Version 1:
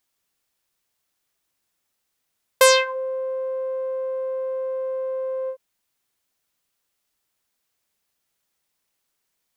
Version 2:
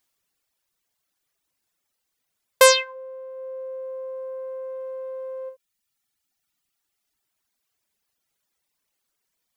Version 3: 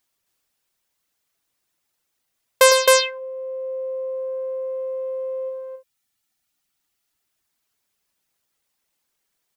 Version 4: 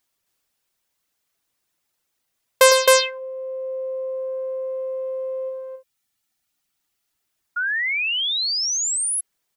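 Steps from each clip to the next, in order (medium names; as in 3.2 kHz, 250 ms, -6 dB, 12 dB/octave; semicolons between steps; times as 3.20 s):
reverb removal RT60 1.9 s; trim +1.5 dB
loudspeakers at several distances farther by 36 m -8 dB, 91 m -1 dB
painted sound rise, 7.56–9.21 s, 1.4–11 kHz -23 dBFS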